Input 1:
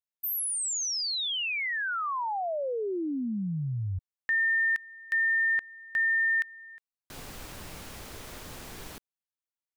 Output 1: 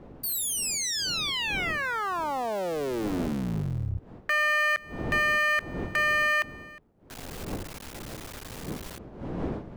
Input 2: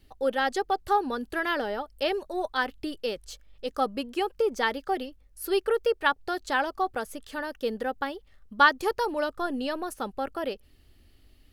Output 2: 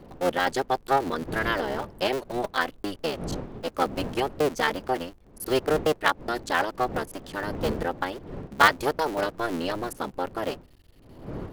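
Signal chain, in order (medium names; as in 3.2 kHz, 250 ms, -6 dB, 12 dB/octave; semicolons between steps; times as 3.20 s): cycle switcher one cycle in 3, muted; wind noise 360 Hz -43 dBFS; trim +3 dB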